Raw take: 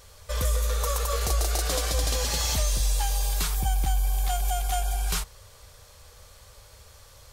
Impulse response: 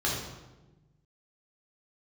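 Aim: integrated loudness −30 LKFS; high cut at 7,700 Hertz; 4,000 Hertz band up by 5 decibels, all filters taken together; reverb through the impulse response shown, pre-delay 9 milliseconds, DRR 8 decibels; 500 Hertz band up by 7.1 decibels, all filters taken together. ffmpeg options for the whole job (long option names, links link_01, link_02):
-filter_complex "[0:a]lowpass=7700,equalizer=frequency=500:width_type=o:gain=8,equalizer=frequency=4000:width_type=o:gain=6.5,asplit=2[link_01][link_02];[1:a]atrim=start_sample=2205,adelay=9[link_03];[link_02][link_03]afir=irnorm=-1:irlink=0,volume=-18dB[link_04];[link_01][link_04]amix=inputs=2:normalize=0,volume=-6dB"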